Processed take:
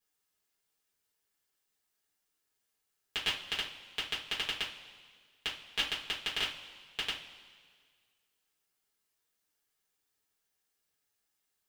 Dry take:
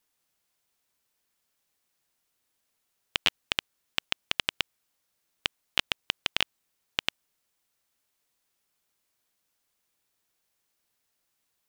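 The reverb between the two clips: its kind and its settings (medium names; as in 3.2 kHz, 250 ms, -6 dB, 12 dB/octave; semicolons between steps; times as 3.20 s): two-slope reverb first 0.26 s, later 1.8 s, from -18 dB, DRR -8 dB; trim -13 dB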